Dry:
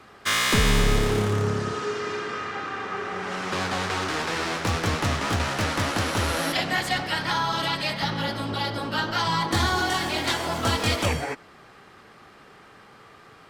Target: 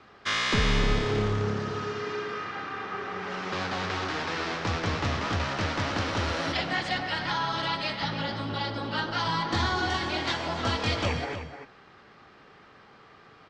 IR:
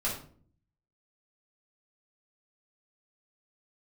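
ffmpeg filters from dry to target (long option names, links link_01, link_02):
-filter_complex "[0:a]lowpass=frequency=5800:width=0.5412,lowpass=frequency=5800:width=1.3066,asplit=2[link_01][link_02];[link_02]adelay=303.2,volume=-9dB,highshelf=frequency=4000:gain=-6.82[link_03];[link_01][link_03]amix=inputs=2:normalize=0,volume=-4dB"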